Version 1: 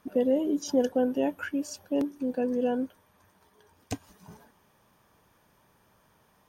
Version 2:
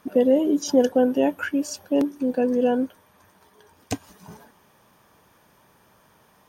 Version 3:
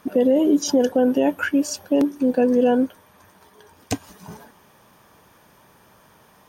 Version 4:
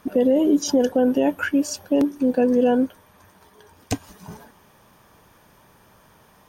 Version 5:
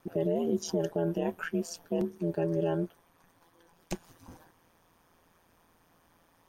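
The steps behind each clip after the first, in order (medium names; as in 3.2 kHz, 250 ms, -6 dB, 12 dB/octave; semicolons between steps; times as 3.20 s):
bass shelf 85 Hz -7.5 dB; trim +7 dB
peak limiter -13.5 dBFS, peak gain reduction 7 dB; trim +4.5 dB
bass shelf 66 Hz +10 dB; trim -1 dB
ring modulator 84 Hz; trim -8.5 dB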